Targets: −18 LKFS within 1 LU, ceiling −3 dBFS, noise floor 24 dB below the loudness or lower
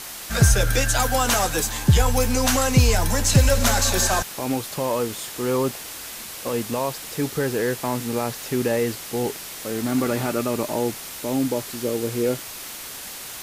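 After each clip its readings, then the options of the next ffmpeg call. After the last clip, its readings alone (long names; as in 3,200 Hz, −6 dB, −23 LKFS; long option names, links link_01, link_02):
background noise floor −36 dBFS; target noise floor −47 dBFS; integrated loudness −22.5 LKFS; sample peak −6.0 dBFS; target loudness −18.0 LKFS
→ -af "afftdn=noise_reduction=11:noise_floor=-36"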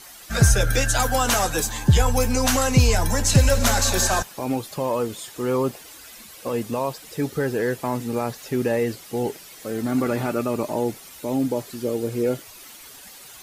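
background noise floor −44 dBFS; target noise floor −47 dBFS
→ -af "afftdn=noise_reduction=6:noise_floor=-44"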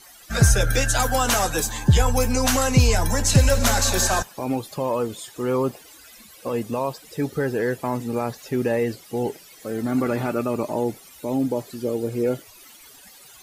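background noise floor −48 dBFS; integrated loudness −22.5 LKFS; sample peak −6.0 dBFS; target loudness −18.0 LKFS
→ -af "volume=4.5dB,alimiter=limit=-3dB:level=0:latency=1"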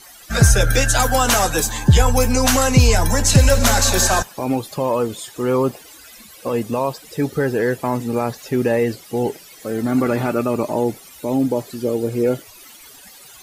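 integrated loudness −18.5 LKFS; sample peak −3.0 dBFS; background noise floor −43 dBFS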